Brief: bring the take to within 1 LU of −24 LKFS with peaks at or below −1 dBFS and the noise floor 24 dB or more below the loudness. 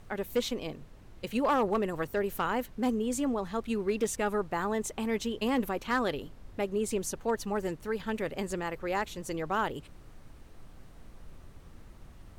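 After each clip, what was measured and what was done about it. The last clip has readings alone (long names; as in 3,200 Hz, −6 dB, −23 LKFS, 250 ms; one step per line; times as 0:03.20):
share of clipped samples 0.3%; peaks flattened at −20.5 dBFS; background noise floor −52 dBFS; target noise floor −56 dBFS; integrated loudness −32.0 LKFS; sample peak −20.5 dBFS; target loudness −24.0 LKFS
→ clipped peaks rebuilt −20.5 dBFS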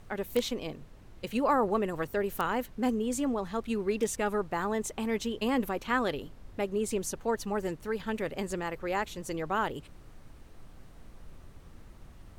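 share of clipped samples 0.0%; background noise floor −52 dBFS; target noise floor −56 dBFS
→ noise reduction from a noise print 6 dB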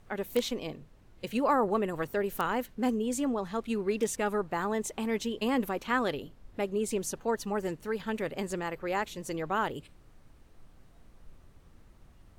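background noise floor −58 dBFS; integrated loudness −32.0 LKFS; sample peak −11.5 dBFS; target loudness −24.0 LKFS
→ level +8 dB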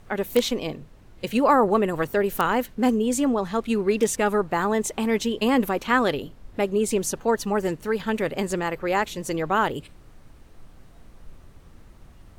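integrated loudness −24.0 LKFS; sample peak −3.5 dBFS; background noise floor −50 dBFS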